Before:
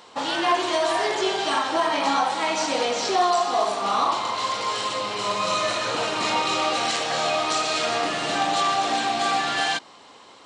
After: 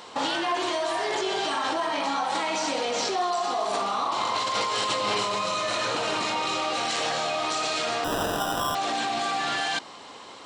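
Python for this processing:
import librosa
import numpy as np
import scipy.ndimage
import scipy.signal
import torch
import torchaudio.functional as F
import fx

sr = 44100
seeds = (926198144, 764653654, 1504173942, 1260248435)

p1 = fx.over_compress(x, sr, threshold_db=-29.0, ratio=-0.5)
p2 = x + (p1 * 10.0 ** (2.0 / 20.0))
p3 = fx.sample_hold(p2, sr, seeds[0], rate_hz=2200.0, jitter_pct=0, at=(8.04, 8.75))
y = p3 * 10.0 ** (-7.0 / 20.0)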